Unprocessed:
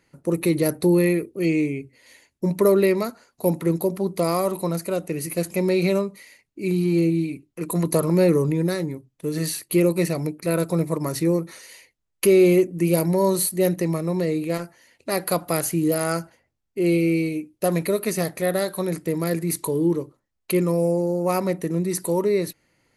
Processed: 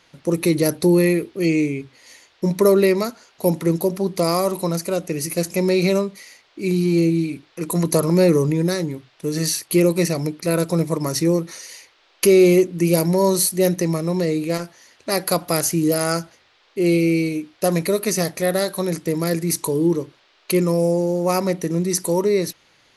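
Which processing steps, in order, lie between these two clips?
bell 5700 Hz +10 dB 0.62 oct; band noise 330–4400 Hz -61 dBFS; gain +2.5 dB

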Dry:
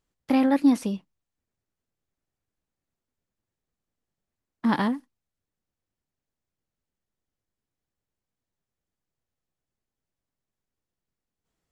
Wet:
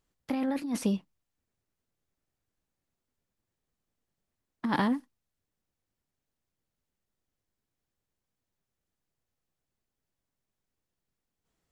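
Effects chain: negative-ratio compressor -25 dBFS, ratio -1; gain -3 dB

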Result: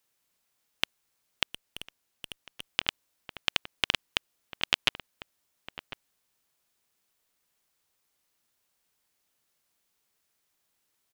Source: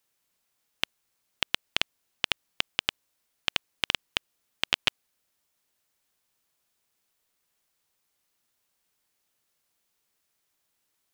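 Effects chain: outdoor echo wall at 180 m, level -11 dB; 1.46–2.66 tube stage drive 26 dB, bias 0.4

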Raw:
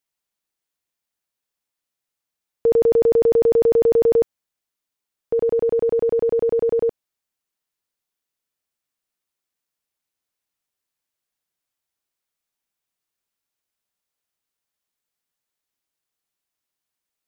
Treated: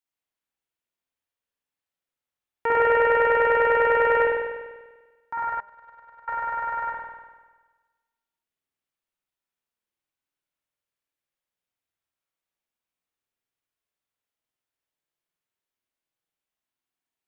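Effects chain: self-modulated delay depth 0.99 ms; spring tank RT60 1.3 s, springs 49 ms, chirp 70 ms, DRR -5.5 dB; 5.6–6.28 gate -15 dBFS, range -23 dB; de-hum 202.5 Hz, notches 10; gain -9 dB

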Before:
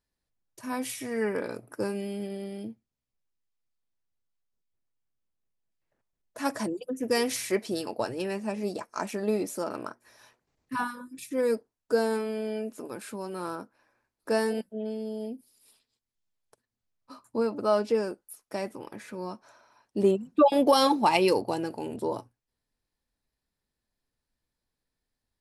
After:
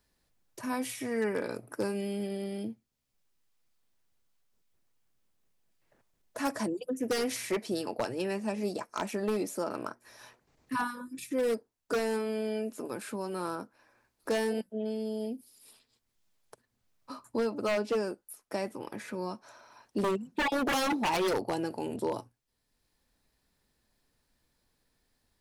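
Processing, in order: wavefolder -20.5 dBFS; three-band squash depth 40%; gain -1.5 dB

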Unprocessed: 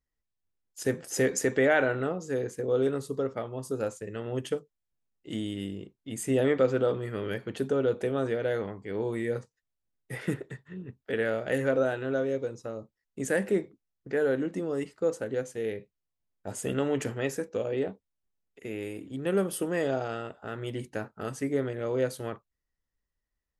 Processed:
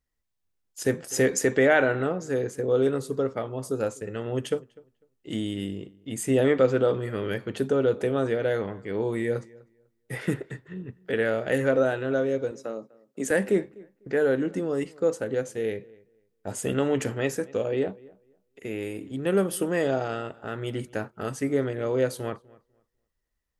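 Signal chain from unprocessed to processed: 12.51–13.31 HPF 180 Hz 24 dB/oct; on a send: darkening echo 0.249 s, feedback 20%, low-pass 2500 Hz, level -23 dB; on the sum: gain +3.5 dB

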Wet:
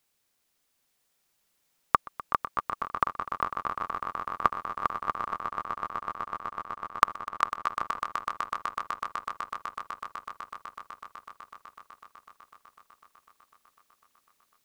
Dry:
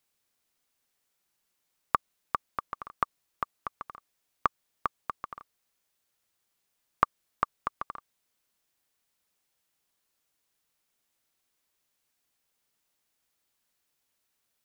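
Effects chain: 5.34–7.78 gate -42 dBFS, range -21 dB; swelling echo 0.125 s, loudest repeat 8, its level -12 dB; gain +3 dB

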